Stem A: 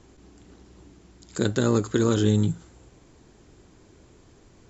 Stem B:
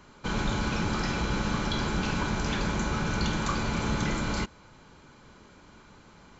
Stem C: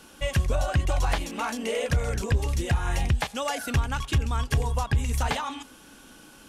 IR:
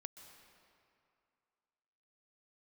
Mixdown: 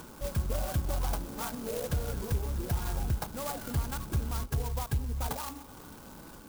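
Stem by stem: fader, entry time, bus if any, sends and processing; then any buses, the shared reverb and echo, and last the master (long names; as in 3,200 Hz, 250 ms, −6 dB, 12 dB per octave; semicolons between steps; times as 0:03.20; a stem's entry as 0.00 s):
muted
−4.5 dB, 0.00 s, no send, downward compressor 3 to 1, threshold −41 dBFS, peak gain reduction 13 dB
−9.0 dB, 0.00 s, send −5 dB, no processing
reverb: on, RT60 2.5 s, pre-delay 118 ms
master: upward compression, threshold −38 dBFS; linear-phase brick-wall low-pass 1,700 Hz; converter with an unsteady clock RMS 0.12 ms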